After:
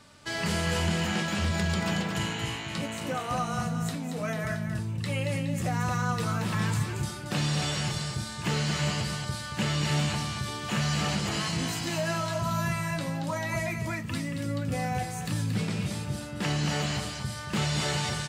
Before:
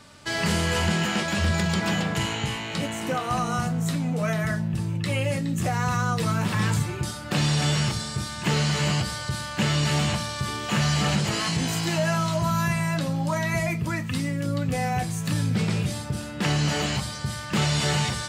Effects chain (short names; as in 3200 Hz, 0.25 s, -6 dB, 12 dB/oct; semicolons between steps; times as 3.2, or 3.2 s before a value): echo 0.228 s -7 dB; gain -5 dB